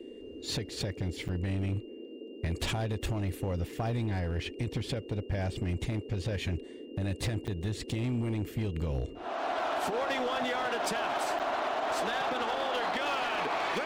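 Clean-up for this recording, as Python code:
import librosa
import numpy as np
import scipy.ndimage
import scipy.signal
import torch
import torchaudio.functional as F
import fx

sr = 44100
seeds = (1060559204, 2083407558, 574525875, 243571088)

y = fx.fix_declip(x, sr, threshold_db=-26.0)
y = fx.notch(y, sr, hz=2800.0, q=30.0)
y = fx.fix_interpolate(y, sr, at_s=(1.28, 7.47, 11.39), length_ms=7.7)
y = fx.noise_reduce(y, sr, print_start_s=1.8, print_end_s=2.3, reduce_db=30.0)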